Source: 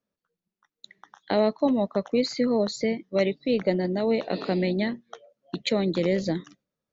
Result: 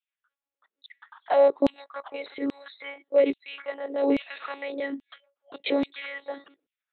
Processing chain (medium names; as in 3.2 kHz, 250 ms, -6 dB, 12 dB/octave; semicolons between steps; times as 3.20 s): monotone LPC vocoder at 8 kHz 280 Hz; LFO high-pass saw down 1.2 Hz 270–3000 Hz